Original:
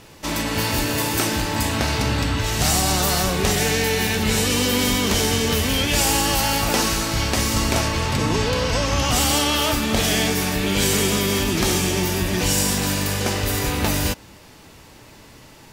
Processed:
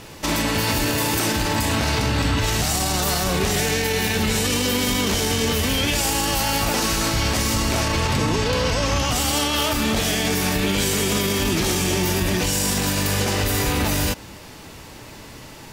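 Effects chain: peak limiter -17.5 dBFS, peak gain reduction 11 dB; trim +5.5 dB

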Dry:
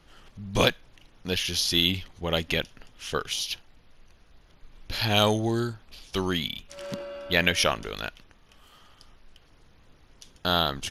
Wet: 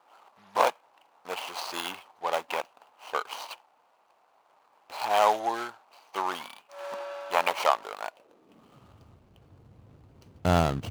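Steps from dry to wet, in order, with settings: median filter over 25 samples; high-pass sweep 860 Hz -> 94 Hz, 8.05–8.89 s; trim +3.5 dB

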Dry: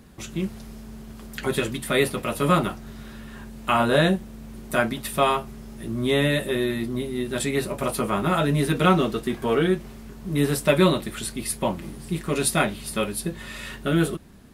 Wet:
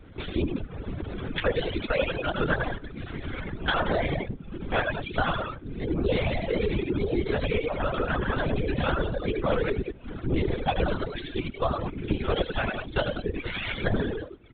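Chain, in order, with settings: sawtooth pitch modulation +5 st, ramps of 170 ms; recorder AGC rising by 5.6 dB/s; on a send: loudspeakers at several distances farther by 30 m -3 dB, 63 m -8 dB; on the sum: compression 3:1, threshold -31 dBFS, peak gain reduction 13.5 dB; in parallel at -3.5 dB: crossover distortion -44 dBFS; on the sum: comb of notches 950 Hz; LPC vocoder at 8 kHz whisper; reverb removal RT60 0.97 s; trim +3 dB

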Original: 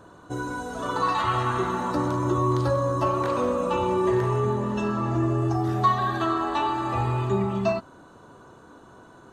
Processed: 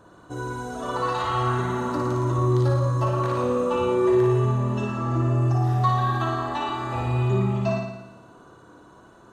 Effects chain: flutter echo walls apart 9.7 m, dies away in 0.91 s; trim -3 dB

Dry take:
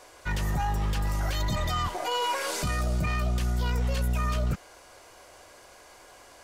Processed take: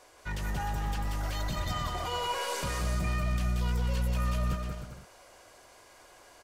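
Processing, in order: 1.87–3.08 s: crackle 550 per s -47 dBFS; bouncing-ball echo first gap 180 ms, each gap 0.7×, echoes 5; trim -6 dB

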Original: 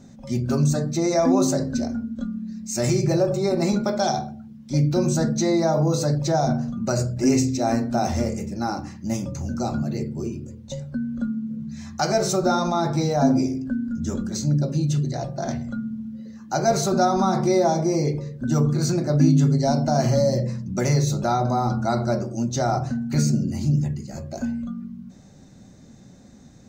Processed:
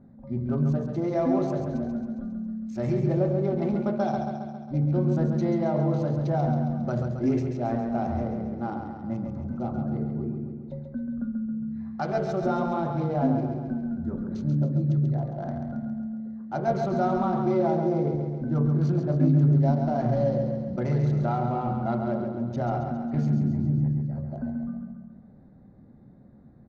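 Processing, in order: local Wiener filter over 15 samples; distance through air 330 m; feedback delay 136 ms, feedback 58%, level -6 dB; trim -5 dB

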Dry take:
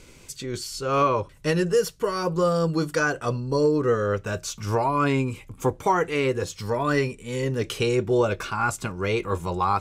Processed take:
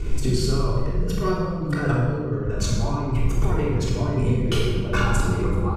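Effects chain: tilt EQ -3 dB/octave; compressor with a negative ratio -30 dBFS, ratio -1; tempo 1.7×; on a send: feedback delay 63 ms, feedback 53%, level -11.5 dB; on the sum: simulated room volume 1300 m³, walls mixed, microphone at 3.4 m; trim -1.5 dB

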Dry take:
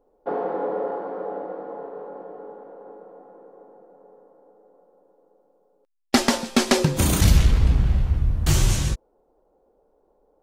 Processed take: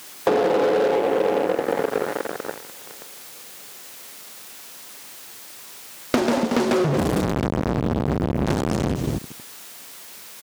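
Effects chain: tilt EQ -3 dB/octave; on a send: feedback delay 229 ms, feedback 29%, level -17 dB; on the sum: waveshaping leveller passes 5; dynamic bell 400 Hz, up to +5 dB, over -17 dBFS, Q 0.74; word length cut 6-bit, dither triangular; high-pass 160 Hz 12 dB/octave; compression 10:1, threshold -12 dBFS, peak gain reduction 12.5 dB; loudspeaker Doppler distortion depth 0.31 ms; trim -4.5 dB

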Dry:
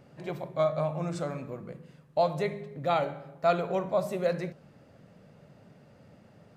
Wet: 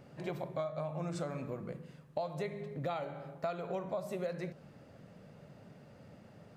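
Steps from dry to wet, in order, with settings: compression 8:1, threshold -34 dBFS, peak gain reduction 15 dB

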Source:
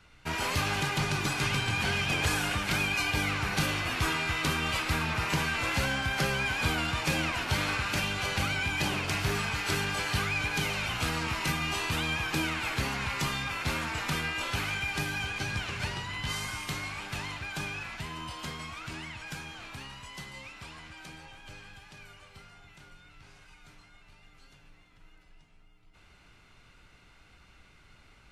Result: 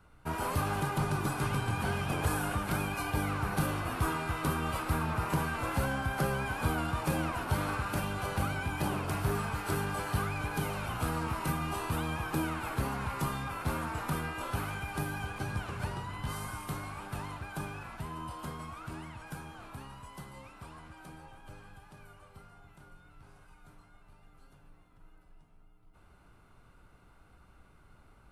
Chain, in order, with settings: high-order bell 3.6 kHz -12.5 dB 2.3 oct

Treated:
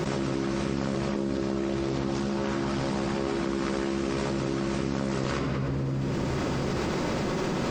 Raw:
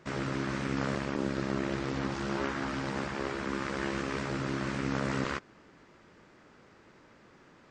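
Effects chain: peaking EQ 1.7 kHz -8.5 dB 1.4 oct; simulated room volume 3500 m³, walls mixed, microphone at 1 m; level flattener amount 100%

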